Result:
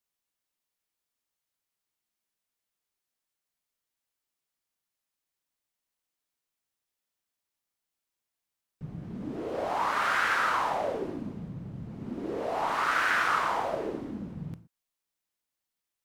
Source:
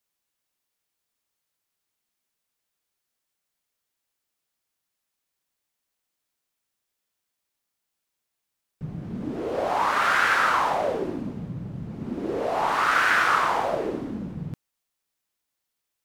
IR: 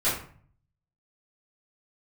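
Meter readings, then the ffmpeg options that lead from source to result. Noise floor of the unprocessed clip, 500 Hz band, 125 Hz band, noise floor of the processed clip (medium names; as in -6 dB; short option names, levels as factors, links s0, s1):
-82 dBFS, -5.5 dB, -5.5 dB, under -85 dBFS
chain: -filter_complex "[0:a]asplit=2[s0][s1];[1:a]atrim=start_sample=2205,afade=t=out:st=0.13:d=0.01,atrim=end_sample=6174,asetrate=28224,aresample=44100[s2];[s1][s2]afir=irnorm=-1:irlink=0,volume=0.0473[s3];[s0][s3]amix=inputs=2:normalize=0,volume=0.501"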